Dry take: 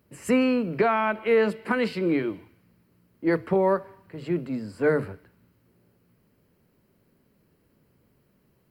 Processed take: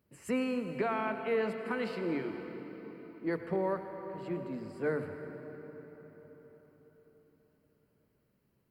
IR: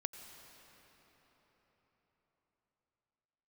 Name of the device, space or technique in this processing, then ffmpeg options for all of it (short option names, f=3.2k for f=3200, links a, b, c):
cathedral: -filter_complex "[1:a]atrim=start_sample=2205[a];[0:a][a]afir=irnorm=-1:irlink=0,volume=-8.5dB"